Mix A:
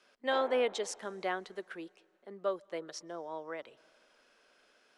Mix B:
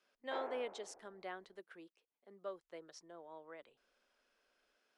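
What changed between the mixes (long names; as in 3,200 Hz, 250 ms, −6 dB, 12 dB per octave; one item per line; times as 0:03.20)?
speech −11.5 dB
reverb: off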